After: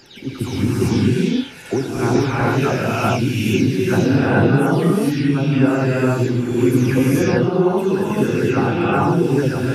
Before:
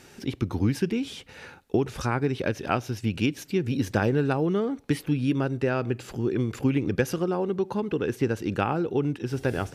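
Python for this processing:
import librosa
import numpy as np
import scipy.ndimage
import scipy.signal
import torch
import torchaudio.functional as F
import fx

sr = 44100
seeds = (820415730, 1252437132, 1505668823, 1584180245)

y = fx.spec_delay(x, sr, highs='early', ms=347)
y = fx.rev_gated(y, sr, seeds[0], gate_ms=470, shape='rising', drr_db=-6.5)
y = F.gain(torch.from_numpy(y), 3.0).numpy()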